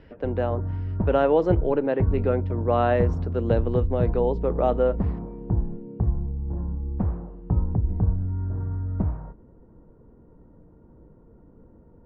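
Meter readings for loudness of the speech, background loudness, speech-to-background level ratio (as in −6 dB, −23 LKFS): −25.0 LKFS, −28.5 LKFS, 3.5 dB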